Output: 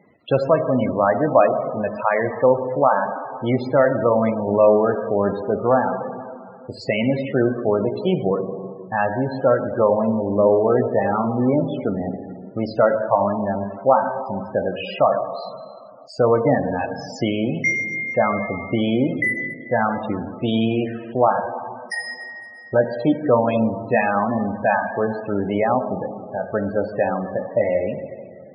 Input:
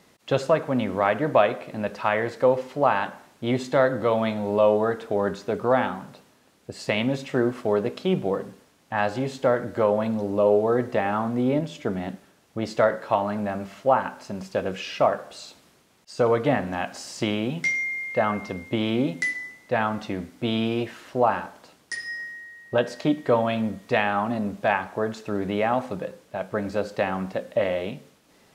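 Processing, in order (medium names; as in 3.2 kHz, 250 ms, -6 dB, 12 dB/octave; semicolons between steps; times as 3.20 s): plate-style reverb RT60 2.4 s, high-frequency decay 0.85×, DRR 6 dB; loudest bins only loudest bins 32; trim +4 dB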